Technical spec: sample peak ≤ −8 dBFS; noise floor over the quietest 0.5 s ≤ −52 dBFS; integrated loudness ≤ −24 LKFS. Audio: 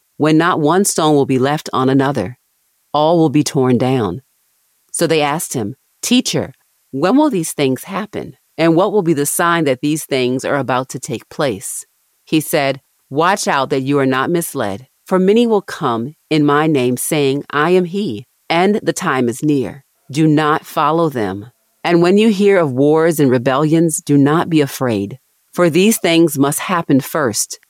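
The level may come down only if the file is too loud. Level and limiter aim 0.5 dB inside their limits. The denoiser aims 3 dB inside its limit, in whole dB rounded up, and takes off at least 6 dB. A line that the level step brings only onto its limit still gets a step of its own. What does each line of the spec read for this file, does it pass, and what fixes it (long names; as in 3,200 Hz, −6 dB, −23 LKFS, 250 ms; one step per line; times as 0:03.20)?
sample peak −2.5 dBFS: out of spec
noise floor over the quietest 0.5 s −62 dBFS: in spec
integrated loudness −15.0 LKFS: out of spec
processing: level −9.5 dB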